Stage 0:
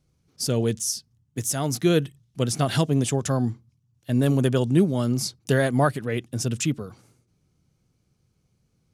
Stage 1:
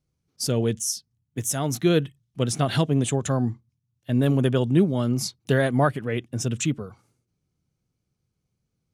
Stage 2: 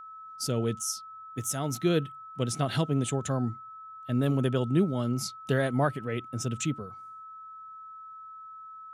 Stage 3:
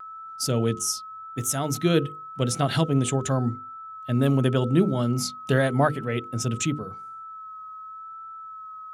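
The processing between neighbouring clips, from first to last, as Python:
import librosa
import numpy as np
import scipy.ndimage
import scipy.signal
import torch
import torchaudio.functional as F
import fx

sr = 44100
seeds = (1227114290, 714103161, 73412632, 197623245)

y1 = fx.noise_reduce_blind(x, sr, reduce_db=9)
y2 = y1 + 10.0 ** (-37.0 / 20.0) * np.sin(2.0 * np.pi * 1300.0 * np.arange(len(y1)) / sr)
y2 = y2 * librosa.db_to_amplitude(-5.5)
y3 = fx.hum_notches(y2, sr, base_hz=50, count=10)
y3 = fx.vibrato(y3, sr, rate_hz=0.88, depth_cents=21.0)
y3 = y3 * librosa.db_to_amplitude(5.5)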